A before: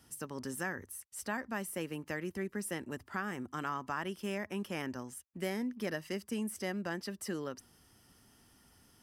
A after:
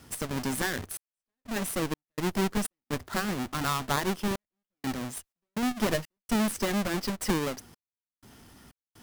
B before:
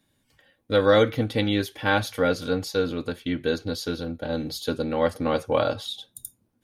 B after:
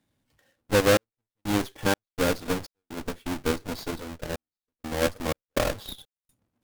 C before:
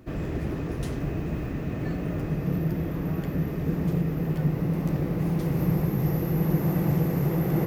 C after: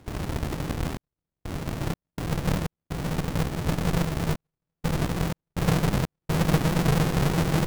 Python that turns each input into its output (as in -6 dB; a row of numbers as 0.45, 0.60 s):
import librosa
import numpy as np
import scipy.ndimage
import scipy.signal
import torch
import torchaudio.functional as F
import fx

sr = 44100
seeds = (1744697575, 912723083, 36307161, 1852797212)

y = fx.halfwave_hold(x, sr)
y = fx.cheby_harmonics(y, sr, harmonics=(7, 8), levels_db=(-25, -15), full_scale_db=-7.0)
y = fx.step_gate(y, sr, bpm=62, pattern='xxxx..xx.xx.xx', floor_db=-60.0, edge_ms=4.5)
y = librosa.util.normalize(y) * 10.0 ** (-12 / 20.0)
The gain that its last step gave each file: +10.5, -6.0, -2.5 dB